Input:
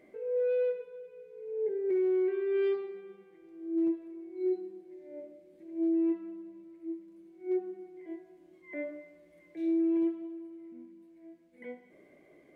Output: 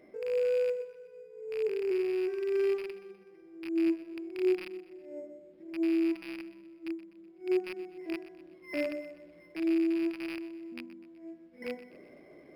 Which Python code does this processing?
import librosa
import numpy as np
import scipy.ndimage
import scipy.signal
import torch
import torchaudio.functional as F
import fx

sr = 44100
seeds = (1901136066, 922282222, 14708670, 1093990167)

p1 = fx.rattle_buzz(x, sr, strikes_db=-50.0, level_db=-31.0)
p2 = fx.rider(p1, sr, range_db=4, speed_s=0.5)
p3 = p2 + fx.echo_feedback(p2, sr, ms=125, feedback_pct=49, wet_db=-15.5, dry=0)
p4 = np.interp(np.arange(len(p3)), np.arange(len(p3))[::6], p3[::6])
y = p4 * 10.0 ** (1.5 / 20.0)